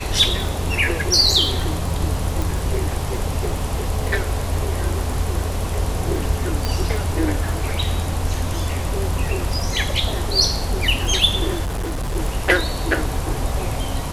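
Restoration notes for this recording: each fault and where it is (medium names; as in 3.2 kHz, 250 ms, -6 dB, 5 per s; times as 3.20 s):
crackle 14 per s -25 dBFS
2.42 s: pop
6.65 s: pop -8 dBFS
11.64–12.16 s: clipped -21 dBFS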